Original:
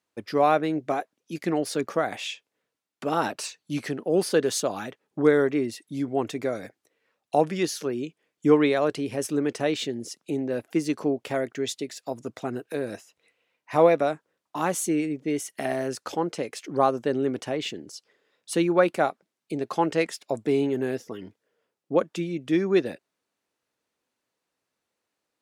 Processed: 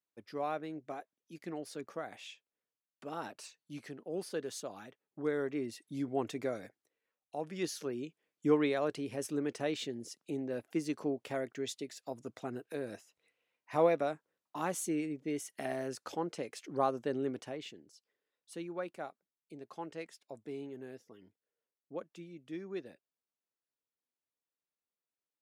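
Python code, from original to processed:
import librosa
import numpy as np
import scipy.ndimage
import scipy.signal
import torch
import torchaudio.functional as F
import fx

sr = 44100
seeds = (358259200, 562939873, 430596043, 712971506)

y = fx.gain(x, sr, db=fx.line((5.19, -16.0), (5.88, -8.0), (6.51, -8.0), (7.35, -19.5), (7.65, -9.5), (17.28, -9.5), (17.95, -19.5)))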